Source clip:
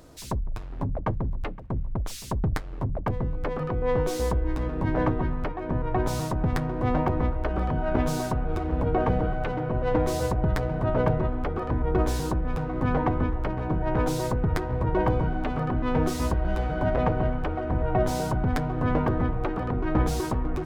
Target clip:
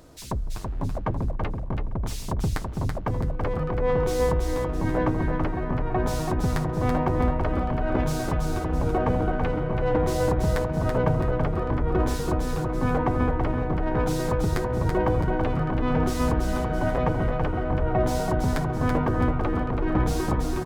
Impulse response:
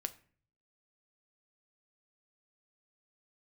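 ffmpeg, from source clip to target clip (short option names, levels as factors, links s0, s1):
-af "aecho=1:1:331|662|993|1324|1655:0.596|0.22|0.0815|0.0302|0.0112"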